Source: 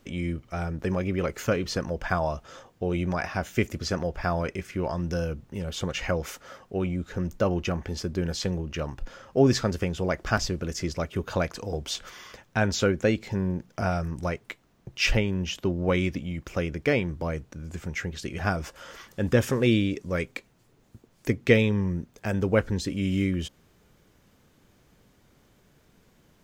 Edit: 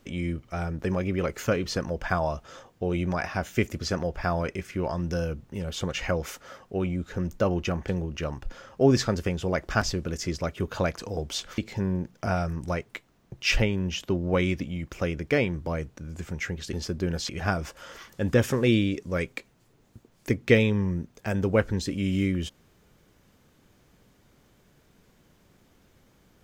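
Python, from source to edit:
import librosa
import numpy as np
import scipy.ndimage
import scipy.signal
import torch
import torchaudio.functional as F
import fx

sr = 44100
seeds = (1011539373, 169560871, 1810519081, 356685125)

y = fx.edit(x, sr, fx.move(start_s=7.88, length_s=0.56, to_s=18.28),
    fx.cut(start_s=12.14, length_s=0.99), tone=tone)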